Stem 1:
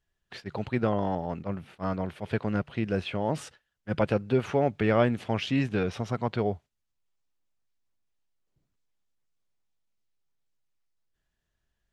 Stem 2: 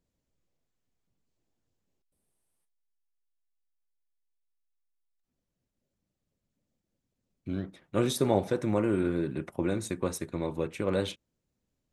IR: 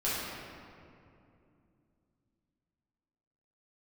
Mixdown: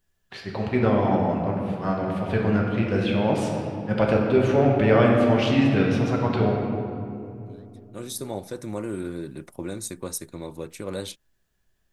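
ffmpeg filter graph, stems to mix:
-filter_complex "[0:a]volume=-1.5dB,asplit=3[link_01][link_02][link_03];[link_02]volume=-3dB[link_04];[1:a]aexciter=amount=3.4:drive=4.5:freq=4000,volume=-3.5dB[link_05];[link_03]apad=whole_len=526003[link_06];[link_05][link_06]sidechaincompress=threshold=-45dB:ratio=5:attack=6.4:release=1440[link_07];[2:a]atrim=start_sample=2205[link_08];[link_04][link_08]afir=irnorm=-1:irlink=0[link_09];[link_01][link_07][link_09]amix=inputs=3:normalize=0"

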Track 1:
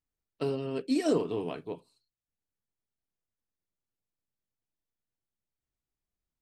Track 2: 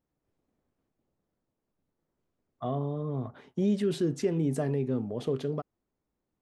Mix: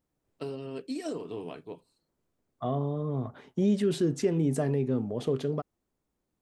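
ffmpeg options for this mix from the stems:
ffmpeg -i stem1.wav -i stem2.wav -filter_complex "[0:a]acompressor=threshold=-27dB:ratio=6,volume=-4dB[link_01];[1:a]volume=1.5dB[link_02];[link_01][link_02]amix=inputs=2:normalize=0,equalizer=frequency=7900:width=1.5:gain=2.5" out.wav

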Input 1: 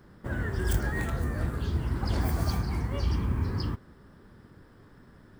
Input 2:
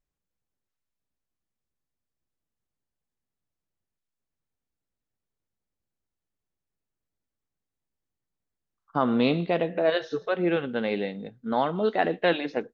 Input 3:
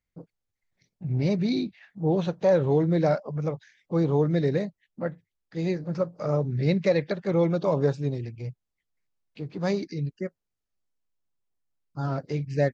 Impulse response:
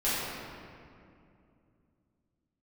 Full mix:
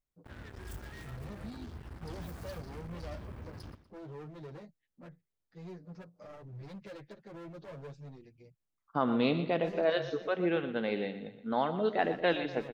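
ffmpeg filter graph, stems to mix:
-filter_complex "[0:a]acrusher=bits=4:mix=0:aa=0.5,volume=-17.5dB,asplit=2[link_01][link_02];[link_02]volume=-16.5dB[link_03];[1:a]volume=-5.5dB,asplit=2[link_04][link_05];[link_05]volume=-12.5dB[link_06];[2:a]asoftclip=type=hard:threshold=-26.5dB,asplit=2[link_07][link_08];[link_08]adelay=8,afreqshift=0.34[link_09];[link_07][link_09]amix=inputs=2:normalize=1,volume=-14.5dB[link_10];[link_03][link_06]amix=inputs=2:normalize=0,aecho=0:1:121|242|363|484|605|726:1|0.45|0.202|0.0911|0.041|0.0185[link_11];[link_01][link_04][link_10][link_11]amix=inputs=4:normalize=0"

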